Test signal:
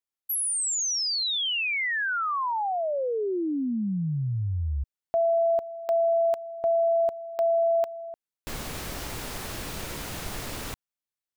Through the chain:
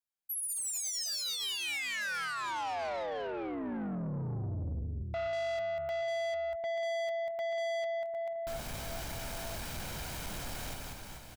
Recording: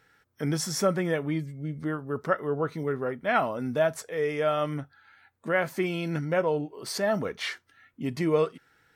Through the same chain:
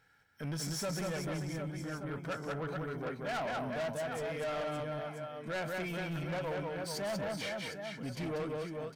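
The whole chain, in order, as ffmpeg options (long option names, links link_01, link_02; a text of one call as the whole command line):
ffmpeg -i in.wav -af "aecho=1:1:1.3:0.38,aecho=1:1:190|437|758.1|1176|1718:0.631|0.398|0.251|0.158|0.1,asoftclip=type=tanh:threshold=-27dB,volume=-6dB" out.wav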